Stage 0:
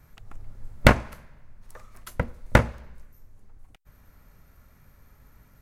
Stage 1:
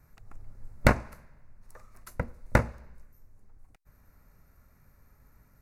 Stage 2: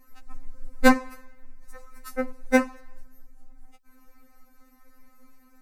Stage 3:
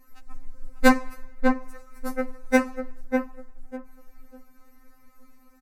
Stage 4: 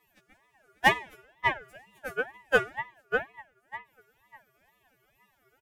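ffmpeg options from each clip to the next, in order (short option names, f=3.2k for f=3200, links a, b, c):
-af "equalizer=f=3.2k:t=o:w=0.31:g=-15,volume=-5dB"
-af "afftfilt=real='re*3.46*eq(mod(b,12),0)':imag='im*3.46*eq(mod(b,12),0)':win_size=2048:overlap=0.75,volume=8.5dB"
-filter_complex "[0:a]asplit=2[a][b];[b]adelay=598,lowpass=f=1.2k:p=1,volume=-4dB,asplit=2[c][d];[d]adelay=598,lowpass=f=1.2k:p=1,volume=0.25,asplit=2[e][f];[f]adelay=598,lowpass=f=1.2k:p=1,volume=0.25[g];[a][c][e][g]amix=inputs=4:normalize=0"
-af "highpass=f=410:t=q:w=4.9,aeval=exprs='val(0)*sin(2*PI*1200*n/s+1200*0.25/2.1*sin(2*PI*2.1*n/s))':c=same,volume=-5dB"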